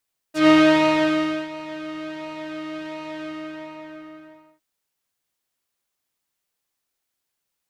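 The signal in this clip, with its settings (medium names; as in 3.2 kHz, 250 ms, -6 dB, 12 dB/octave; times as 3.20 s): synth patch with pulse-width modulation D#4, interval +12 st, sub -21 dB, noise -8 dB, filter lowpass, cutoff 1.6 kHz, Q 1, filter envelope 3 oct, filter decay 0.06 s, filter sustain 30%, attack 128 ms, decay 1.01 s, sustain -19.5 dB, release 1.39 s, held 2.87 s, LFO 1.4 Hz, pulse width 28%, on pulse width 10%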